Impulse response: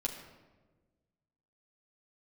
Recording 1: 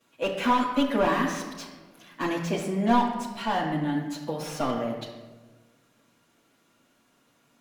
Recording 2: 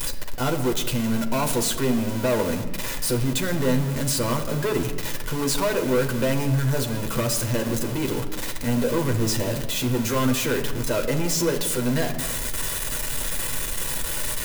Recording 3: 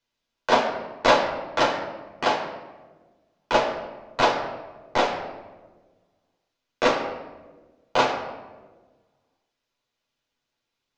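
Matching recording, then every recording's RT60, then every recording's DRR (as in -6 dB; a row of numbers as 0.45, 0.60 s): 3; 1.3, 1.3, 1.3 s; -10.5, 3.5, -1.5 dB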